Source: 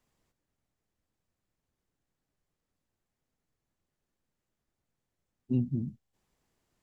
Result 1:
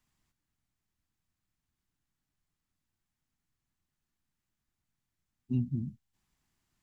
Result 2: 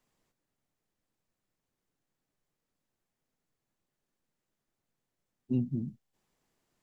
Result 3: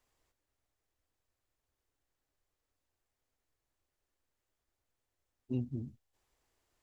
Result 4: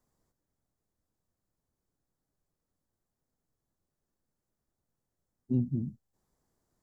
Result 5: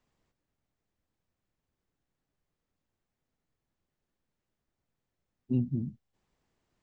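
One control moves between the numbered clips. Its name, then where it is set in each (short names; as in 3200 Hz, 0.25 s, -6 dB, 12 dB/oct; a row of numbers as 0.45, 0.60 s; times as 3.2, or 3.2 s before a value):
bell, frequency: 500, 60, 180, 2700, 13000 Hz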